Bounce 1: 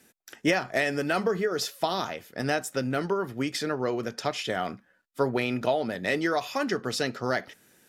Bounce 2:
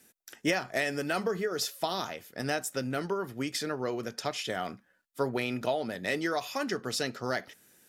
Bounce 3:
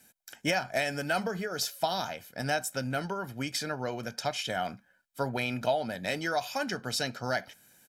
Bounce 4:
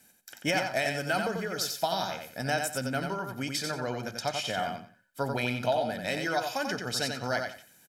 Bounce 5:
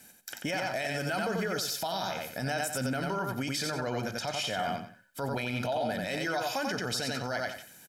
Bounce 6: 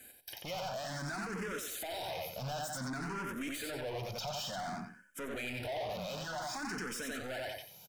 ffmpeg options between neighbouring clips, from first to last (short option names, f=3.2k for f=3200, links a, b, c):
-af "highshelf=f=5.4k:g=7,volume=-4.5dB"
-af "aecho=1:1:1.3:0.55"
-af "aecho=1:1:90|180|270:0.562|0.129|0.0297"
-filter_complex "[0:a]asplit=2[a][b];[b]acompressor=threshold=-36dB:ratio=6,volume=0dB[c];[a][c]amix=inputs=2:normalize=0,alimiter=limit=-23dB:level=0:latency=1:release=24"
-filter_complex "[0:a]asoftclip=type=hard:threshold=-36.5dB,asplit=2[a][b];[b]afreqshift=0.55[c];[a][c]amix=inputs=2:normalize=1,volume=1.5dB"